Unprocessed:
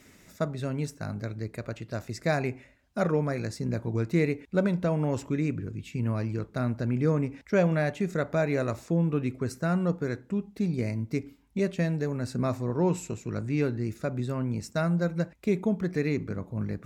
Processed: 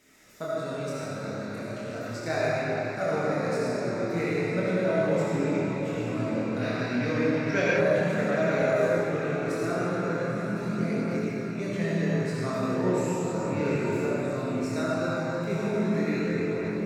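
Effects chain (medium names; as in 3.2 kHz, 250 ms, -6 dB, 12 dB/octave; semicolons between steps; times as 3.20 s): bass shelf 210 Hz -10.5 dB; algorithmic reverb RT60 4.7 s, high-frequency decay 0.7×, pre-delay 25 ms, DRR -7.5 dB; time-frequency box 6.61–7.77 s, 1.5–6.2 kHz +9 dB; on a send: echo that smears into a reverb 907 ms, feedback 49%, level -10.5 dB; on the sum: chorus voices 2, 0.18 Hz, delay 26 ms, depth 2.9 ms; trim -1 dB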